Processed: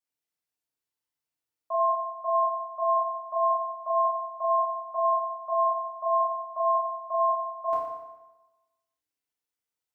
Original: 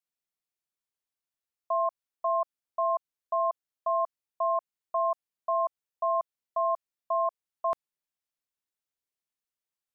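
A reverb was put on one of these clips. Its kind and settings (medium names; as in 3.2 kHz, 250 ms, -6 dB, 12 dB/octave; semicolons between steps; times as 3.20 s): FDN reverb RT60 1.1 s, low-frequency decay 0.95×, high-frequency decay 0.8×, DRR -7 dB; trim -6 dB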